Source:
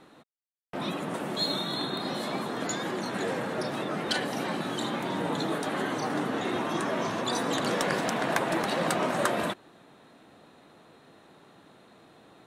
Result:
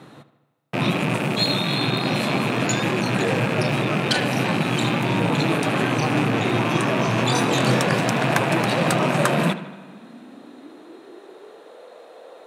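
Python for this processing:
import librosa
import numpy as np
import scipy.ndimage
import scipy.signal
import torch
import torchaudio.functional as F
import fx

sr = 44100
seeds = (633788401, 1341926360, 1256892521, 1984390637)

p1 = fx.rattle_buzz(x, sr, strikes_db=-43.0, level_db=-24.0)
p2 = fx.doubler(p1, sr, ms=23.0, db=-2.5, at=(7.15, 7.8))
p3 = p2 + fx.echo_filtered(p2, sr, ms=77, feedback_pct=62, hz=4100.0, wet_db=-14, dry=0)
p4 = fx.filter_sweep_highpass(p3, sr, from_hz=120.0, to_hz=510.0, start_s=8.9, end_s=11.84, q=5.4)
p5 = fx.rider(p4, sr, range_db=10, speed_s=0.5)
p6 = p4 + (p5 * librosa.db_to_amplitude(1.0))
y = fx.rev_spring(p6, sr, rt60_s=2.1, pass_ms=(34,), chirp_ms=35, drr_db=19.0)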